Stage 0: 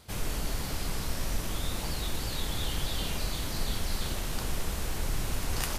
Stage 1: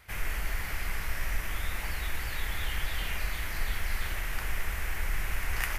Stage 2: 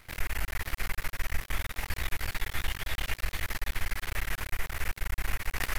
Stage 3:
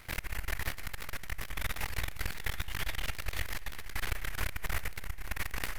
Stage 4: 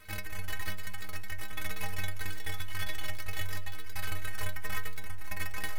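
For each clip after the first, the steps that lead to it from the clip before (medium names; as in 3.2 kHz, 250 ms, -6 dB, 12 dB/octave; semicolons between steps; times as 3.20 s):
ten-band graphic EQ 125 Hz -8 dB, 250 Hz -11 dB, 500 Hz -6 dB, 1 kHz -3 dB, 2 kHz +11 dB, 4 kHz -10 dB, 8 kHz -7 dB; trim +1.5 dB
compression, threshold -27 dBFS, peak gain reduction 5 dB; half-wave rectifier; trim +5 dB
compressor with a negative ratio -32 dBFS, ratio -0.5; reverberation RT60 3.4 s, pre-delay 36 ms, DRR 19 dB; trim -2 dB
inharmonic resonator 93 Hz, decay 0.47 s, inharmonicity 0.03; trim +10 dB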